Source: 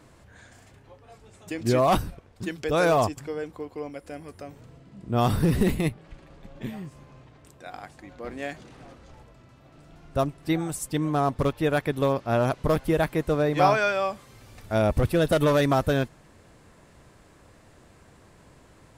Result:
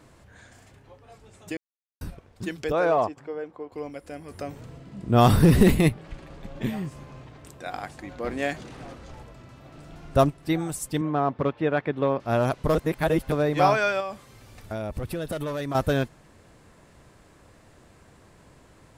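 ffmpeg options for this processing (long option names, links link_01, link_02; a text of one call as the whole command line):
ffmpeg -i in.wav -filter_complex "[0:a]asettb=1/sr,asplit=3[link_01][link_02][link_03];[link_01]atrim=end=2.724[link_04];[link_02]atrim=start=2.72:end=3.72,asetpts=PTS-STARTPTS,afade=type=in:duration=0.004:curve=qsin,afade=type=out:start_time=0.996:duration=0.004:curve=qsin,bandpass=frequency=700:width_type=q:width=0.57[link_05];[link_03]atrim=start=3.716[link_06];[link_04][link_05]acrossfade=duration=0.004:curve1=hsin:curve2=qsin[link_07];[link_07][link_06]acrossfade=duration=0.004:curve1=qsin:curve2=hsin,asplit=3[link_08][link_09][link_10];[link_08]afade=type=out:start_time=4.3:duration=0.02[link_11];[link_09]acontrast=52,afade=type=in:start_time=4.3:duration=0.02,afade=type=out:start_time=10.29:duration=0.02[link_12];[link_10]afade=type=in:start_time=10.29:duration=0.02[link_13];[link_11][link_12][link_13]amix=inputs=3:normalize=0,asettb=1/sr,asplit=3[link_14][link_15][link_16];[link_14]atrim=end=11.014[link_17];[link_15]atrim=start=11.01:end=12.2,asetpts=PTS-STARTPTS,afade=type=in:duration=0.004:curve=qsin,afade=type=out:start_time=1.186:duration=0.004:curve=qsin,highpass=140,lowpass=2600[link_18];[link_16]atrim=start=12.196[link_19];[link_17][link_18]acrossfade=duration=0.004:curve1=hsin:curve2=qsin[link_20];[link_20][link_19]acrossfade=duration=0.004:curve1=qsin:curve2=hsin,asettb=1/sr,asplit=3[link_21][link_22][link_23];[link_21]atrim=end=14.004[link_24];[link_22]atrim=start=14:end=15.75,asetpts=PTS-STARTPTS,afade=type=in:duration=0.004:curve=qsin,afade=type=out:start_time=1.746:duration=0.004:curve=qsin,acompressor=threshold=-27dB:ratio=6:attack=3.2:release=140:knee=1:detection=peak[link_25];[link_23]atrim=start=15.746[link_26];[link_24][link_25]acrossfade=duration=0.004:curve1=hsin:curve2=qsin[link_27];[link_27][link_26]acrossfade=duration=0.004:curve1=qsin:curve2=hsin,asplit=5[link_28][link_29][link_30][link_31][link_32];[link_28]atrim=end=1.57,asetpts=PTS-STARTPTS,afade=type=out:start_time=1.566:duration=0.004:curve=hsin[link_33];[link_29]atrim=start=1.57:end=2.01,asetpts=PTS-STARTPTS,volume=0[link_34];[link_30]atrim=start=2.01:end=12.752,asetpts=PTS-STARTPTS,afade=type=in:duration=0.004:curve=hsin[link_35];[link_31]atrim=start=12.748:end=13.322,asetpts=PTS-STARTPTS,areverse[link_36];[link_32]atrim=start=13.318[link_37];[link_33][link_34][link_35]concat=n=3:v=0:a=1[link_38];[link_38][link_36]acrossfade=duration=0.004:curve1=hsin:curve2=hsin[link_39];[link_39][link_37]acrossfade=duration=0.004:curve1=hsin:curve2=hsin" out.wav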